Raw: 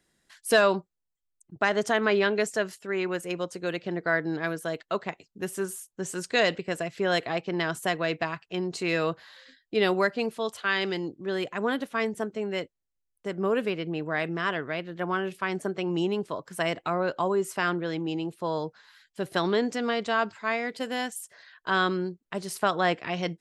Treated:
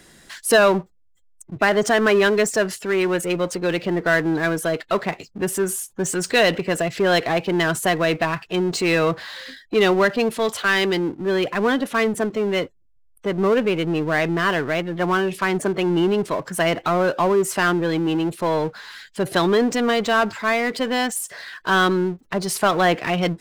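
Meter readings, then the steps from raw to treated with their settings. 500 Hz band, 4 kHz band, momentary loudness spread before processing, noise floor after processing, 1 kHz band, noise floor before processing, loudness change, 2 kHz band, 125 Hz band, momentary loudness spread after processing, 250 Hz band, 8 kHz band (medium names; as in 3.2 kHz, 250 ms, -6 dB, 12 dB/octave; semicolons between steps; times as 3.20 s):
+8.0 dB, +7.5 dB, 10 LU, -55 dBFS, +7.5 dB, -81 dBFS, +8.0 dB, +7.5 dB, +9.0 dB, 8 LU, +9.0 dB, +11.5 dB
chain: spectral gate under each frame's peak -30 dB strong; power-law waveshaper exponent 0.7; trim +4 dB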